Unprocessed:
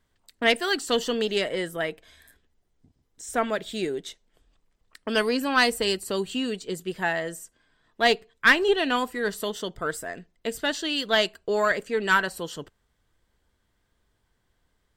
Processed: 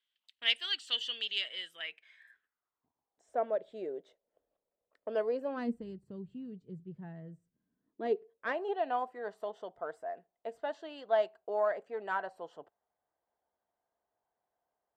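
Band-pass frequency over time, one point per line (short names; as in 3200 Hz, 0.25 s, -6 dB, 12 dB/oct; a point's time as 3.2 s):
band-pass, Q 4.1
1.73 s 3100 Hz
3.43 s 570 Hz
5.45 s 570 Hz
5.86 s 140 Hz
7.4 s 140 Hz
8.63 s 720 Hz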